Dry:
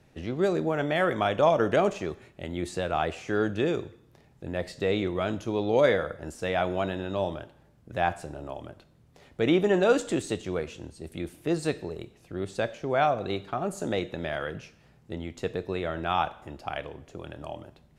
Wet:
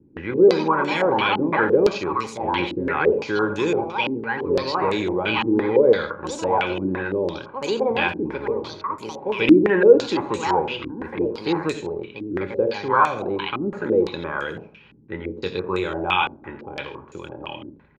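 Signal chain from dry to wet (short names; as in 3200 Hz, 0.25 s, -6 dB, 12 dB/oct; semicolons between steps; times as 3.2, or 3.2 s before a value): echoes that change speed 0.159 s, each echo +4 st, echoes 2, each echo -6 dB; in parallel at +1 dB: limiter -19.5 dBFS, peak gain reduction 11 dB; 15.22–16.97 on the sum: doubler 22 ms -8 dB; echo 85 ms -12.5 dB; reverb RT60 0.40 s, pre-delay 3 ms, DRR 12.5 dB; stepped low-pass 5.9 Hz 290–7400 Hz; gain -8 dB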